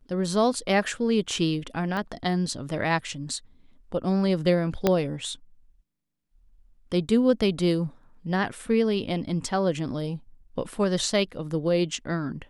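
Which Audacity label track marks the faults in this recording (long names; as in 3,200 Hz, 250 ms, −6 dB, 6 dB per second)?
1.970000	1.970000	click −19 dBFS
4.870000	4.870000	click −7 dBFS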